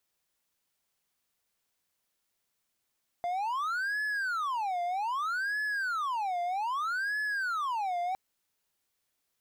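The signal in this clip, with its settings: siren wail 698–1710 Hz 0.63/s triangle -27 dBFS 4.91 s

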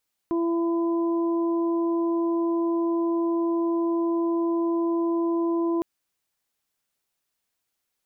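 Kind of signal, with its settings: steady additive tone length 5.51 s, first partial 336 Hz, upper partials -15/-12.5 dB, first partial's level -21.5 dB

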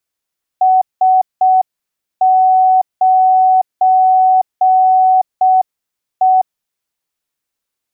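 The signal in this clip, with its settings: Morse "S9E" 6 wpm 749 Hz -6.5 dBFS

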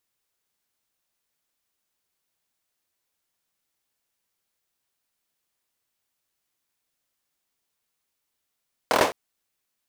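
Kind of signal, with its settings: hand clap length 0.21 s, bursts 5, apart 25 ms, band 590 Hz, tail 0.30 s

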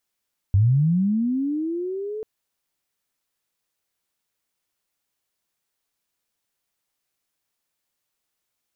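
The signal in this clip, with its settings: chirp linear 92 Hz -> 440 Hz -13 dBFS -> -28 dBFS 1.69 s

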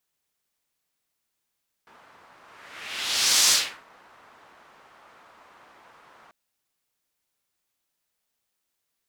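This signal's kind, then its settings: whoosh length 4.44 s, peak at 1.63, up 1.20 s, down 0.36 s, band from 1100 Hz, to 5800 Hz, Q 1.4, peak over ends 35.5 dB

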